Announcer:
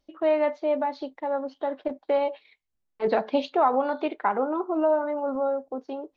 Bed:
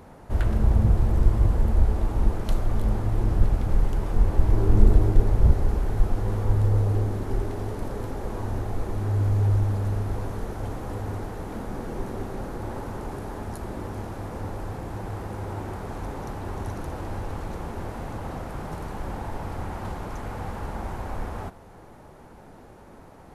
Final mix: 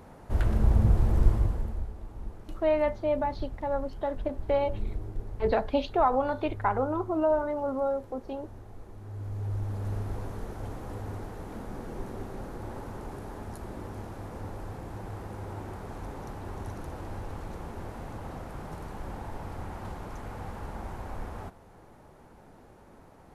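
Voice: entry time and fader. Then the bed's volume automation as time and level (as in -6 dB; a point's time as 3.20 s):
2.40 s, -2.5 dB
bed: 1.30 s -2.5 dB
1.93 s -17.5 dB
9.00 s -17.5 dB
9.93 s -6 dB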